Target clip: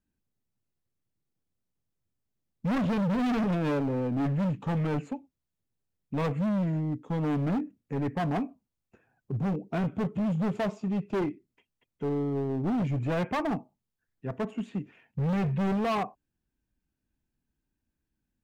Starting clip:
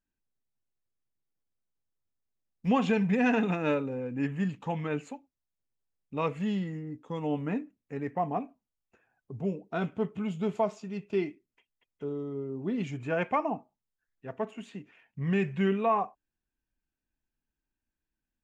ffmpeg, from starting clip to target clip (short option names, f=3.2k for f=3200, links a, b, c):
-filter_complex "[0:a]equalizer=f=130:w=0.33:g=11,acrossover=split=500|2700[a][b][c];[c]acompressor=threshold=-58dB:ratio=6[d];[a][b][d]amix=inputs=3:normalize=0,asoftclip=type=hard:threshold=-25.5dB"